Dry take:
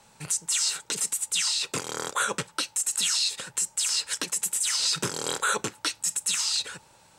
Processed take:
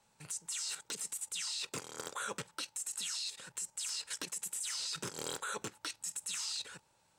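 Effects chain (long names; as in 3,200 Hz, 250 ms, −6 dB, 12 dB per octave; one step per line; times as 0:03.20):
output level in coarse steps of 11 dB
wave folding −23 dBFS
level −6 dB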